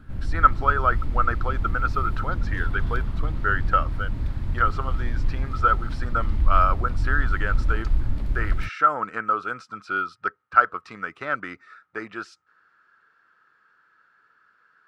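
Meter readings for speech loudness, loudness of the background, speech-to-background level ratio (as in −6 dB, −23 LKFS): −25.5 LKFS, −29.0 LKFS, 3.5 dB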